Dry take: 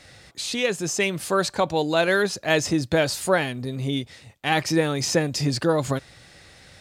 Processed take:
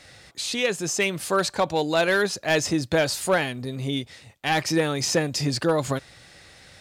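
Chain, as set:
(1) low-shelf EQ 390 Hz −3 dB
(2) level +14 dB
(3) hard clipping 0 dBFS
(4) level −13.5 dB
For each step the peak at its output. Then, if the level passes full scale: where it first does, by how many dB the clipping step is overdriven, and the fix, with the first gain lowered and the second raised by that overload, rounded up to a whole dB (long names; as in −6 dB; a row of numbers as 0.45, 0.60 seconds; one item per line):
−6.0, +8.0, 0.0, −13.5 dBFS
step 2, 8.0 dB
step 2 +6 dB, step 4 −5.5 dB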